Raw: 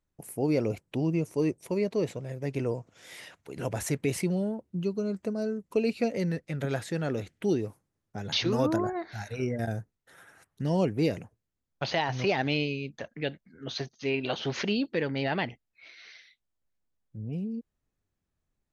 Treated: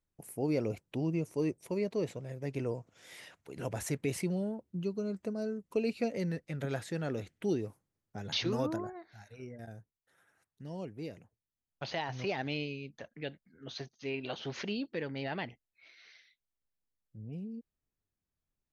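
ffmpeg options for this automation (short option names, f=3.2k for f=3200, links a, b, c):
-af "volume=2.5dB,afade=t=out:st=8.48:d=0.55:silence=0.298538,afade=t=in:st=11.18:d=0.7:silence=0.421697"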